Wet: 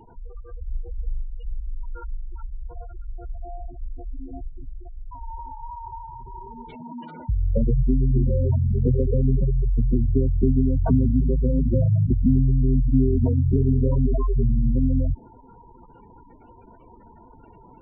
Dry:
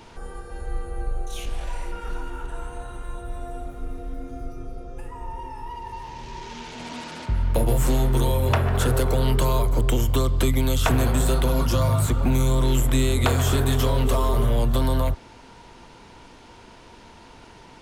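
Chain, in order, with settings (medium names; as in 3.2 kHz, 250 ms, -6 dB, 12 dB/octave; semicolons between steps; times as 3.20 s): dynamic bell 210 Hz, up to +7 dB, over -39 dBFS, Q 1.1; spectral gate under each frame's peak -10 dB strong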